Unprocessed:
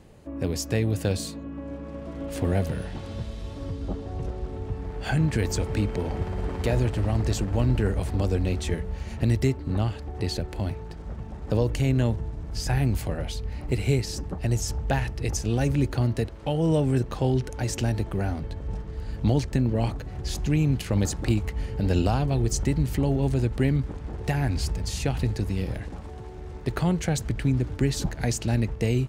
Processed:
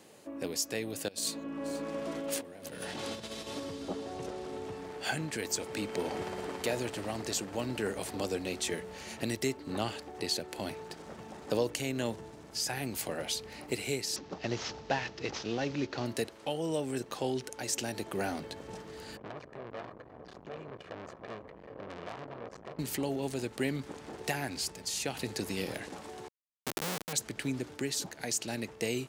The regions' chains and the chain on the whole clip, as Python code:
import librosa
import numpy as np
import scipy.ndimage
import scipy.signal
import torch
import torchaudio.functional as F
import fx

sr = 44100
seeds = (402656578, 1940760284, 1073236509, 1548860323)

y = fx.chain(x, sr, fx.over_compress(threshold_db=-35.0, ratio=-1.0),
    fx.echo_single(ms=481, db=-20.5), at=(1.08, 3.6))
y = fx.chain(y, sr, fx.cvsd(bps=32000),
    fx.lowpass(hz=3800.0, slope=6), at=(14.16, 16.06))
y = fx.chain(y, sr, fx.lower_of_two(delay_ms=1.7),
    fx.lowpass(hz=1200.0, slope=12),
    fx.tube_stage(drive_db=35.0, bias=0.7), at=(19.17, 22.79))
y = fx.chain(y, sr, fx.lowpass(hz=2100.0, slope=12),
    fx.schmitt(flips_db=-26.5), at=(26.28, 27.13))
y = scipy.signal.sosfilt(scipy.signal.butter(2, 280.0, 'highpass', fs=sr, output='sos'), y)
y = fx.high_shelf(y, sr, hz=3100.0, db=9.5)
y = fx.rider(y, sr, range_db=4, speed_s=0.5)
y = y * 10.0 ** (-4.5 / 20.0)